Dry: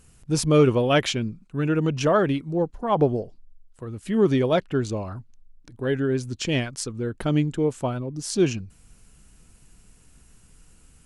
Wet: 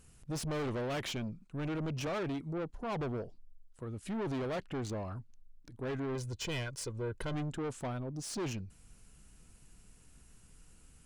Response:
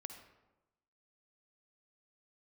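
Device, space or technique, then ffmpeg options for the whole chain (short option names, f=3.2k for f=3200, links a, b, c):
saturation between pre-emphasis and de-emphasis: -filter_complex "[0:a]highshelf=f=5.8k:g=8.5,asoftclip=type=tanh:threshold=-28dB,highshelf=f=5.8k:g=-8.5,asettb=1/sr,asplit=3[a][b][c];[a]atrim=end=6.154[d];[b]atrim=start=6.15:end=7.34,asetpts=PTS-STARTPTS,afade=t=in:d=0.004:c=qsin,afade=t=out:st=1.186:d=0.004:c=qsin,aecho=1:1:2:0.57,atrim=end_sample=52479[e];[c]atrim=start=7.336[f];[d][e]acrossfade=d=0.004:c1=hsin:c2=qsin[g];[g][f]acrossfade=d=0.004:c1=qsin:c2=hsin,volume=-5.5dB"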